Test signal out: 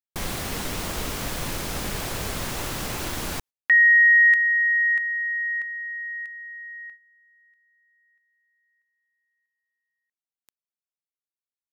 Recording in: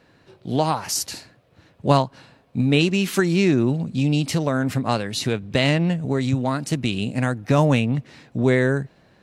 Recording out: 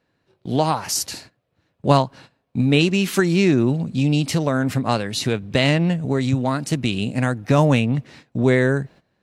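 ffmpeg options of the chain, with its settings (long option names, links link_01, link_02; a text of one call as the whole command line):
ffmpeg -i in.wav -af "agate=range=-15dB:threshold=-44dB:ratio=16:detection=peak,volume=1.5dB" out.wav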